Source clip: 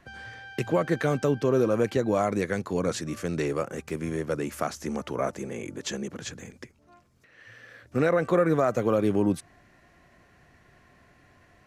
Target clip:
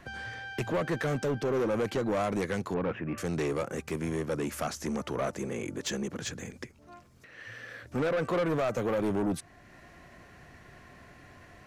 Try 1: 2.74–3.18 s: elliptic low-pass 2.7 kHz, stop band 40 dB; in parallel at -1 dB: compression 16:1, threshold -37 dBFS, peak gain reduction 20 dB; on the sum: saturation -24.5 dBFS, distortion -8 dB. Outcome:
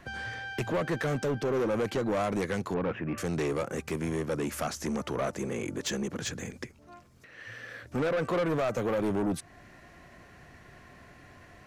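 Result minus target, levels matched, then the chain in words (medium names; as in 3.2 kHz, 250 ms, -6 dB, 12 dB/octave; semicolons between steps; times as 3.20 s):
compression: peak gain reduction -9 dB
2.74–3.18 s: elliptic low-pass 2.7 kHz, stop band 40 dB; in parallel at -1 dB: compression 16:1, threshold -46.5 dBFS, peak gain reduction 29 dB; on the sum: saturation -24.5 dBFS, distortion -8 dB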